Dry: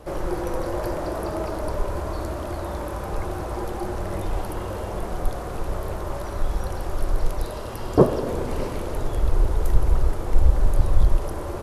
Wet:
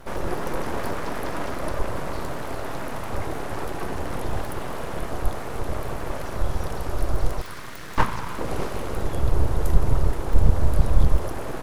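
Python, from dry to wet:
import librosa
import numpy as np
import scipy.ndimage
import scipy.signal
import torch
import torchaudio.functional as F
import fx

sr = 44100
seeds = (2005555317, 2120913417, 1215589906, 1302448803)

y = fx.ellip_highpass(x, sr, hz=420.0, order=4, stop_db=40, at=(7.41, 8.39))
y = np.abs(y)
y = y * librosa.db_to_amplitude(1.5)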